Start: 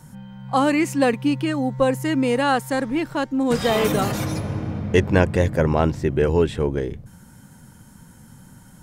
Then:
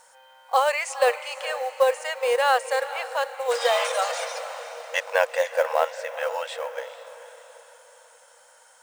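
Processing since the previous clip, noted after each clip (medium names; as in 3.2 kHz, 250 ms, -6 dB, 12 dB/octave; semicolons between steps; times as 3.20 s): FFT band-pass 470–9900 Hz; echo that smears into a reverb 457 ms, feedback 47%, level -13 dB; companded quantiser 6-bit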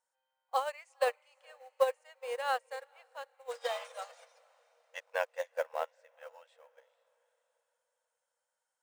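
upward expansion 2.5:1, over -32 dBFS; trim -6.5 dB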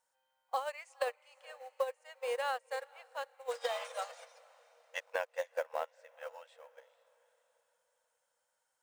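compression 6:1, threshold -36 dBFS, peak gain reduction 14 dB; trim +4.5 dB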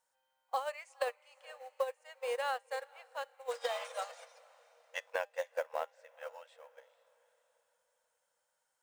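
feedback comb 200 Hz, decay 0.24 s, harmonics all, mix 30%; trim +2.5 dB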